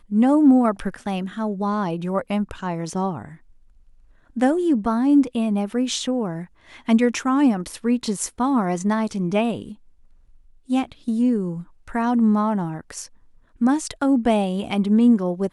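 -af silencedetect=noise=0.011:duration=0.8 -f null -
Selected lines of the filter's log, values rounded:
silence_start: 3.35
silence_end: 4.36 | silence_duration: 1.01
silence_start: 9.74
silence_end: 10.69 | silence_duration: 0.95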